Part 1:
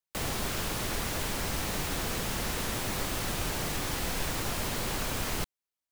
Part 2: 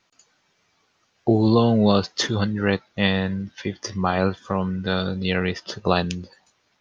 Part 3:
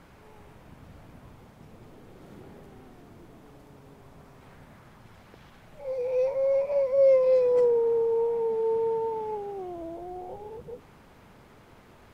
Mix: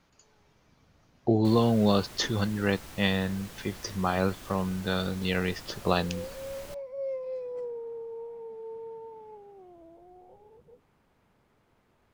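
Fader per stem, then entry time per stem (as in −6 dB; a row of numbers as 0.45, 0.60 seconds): −13.5, −5.5, −14.5 decibels; 1.30, 0.00, 0.00 seconds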